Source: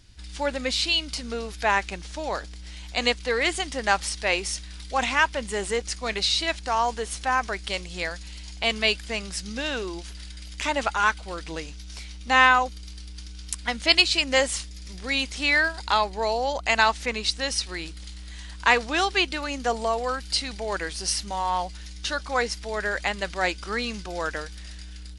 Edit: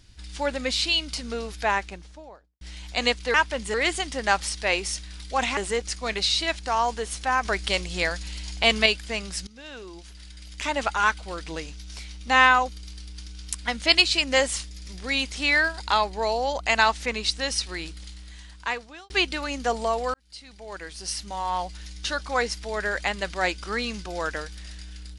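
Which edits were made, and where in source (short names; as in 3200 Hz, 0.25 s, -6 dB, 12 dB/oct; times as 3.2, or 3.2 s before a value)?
1.48–2.61 studio fade out
5.17–5.57 move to 3.34
7.45–8.86 gain +4.5 dB
9.47–10.93 fade in, from -19 dB
17.91–19.1 fade out linear
20.14–21.84 fade in linear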